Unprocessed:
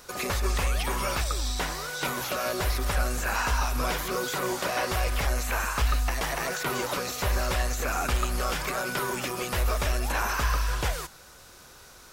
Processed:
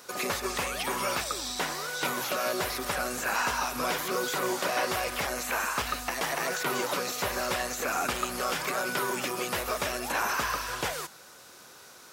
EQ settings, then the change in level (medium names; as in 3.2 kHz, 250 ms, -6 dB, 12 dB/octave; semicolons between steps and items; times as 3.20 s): high-pass 180 Hz 12 dB/octave; 0.0 dB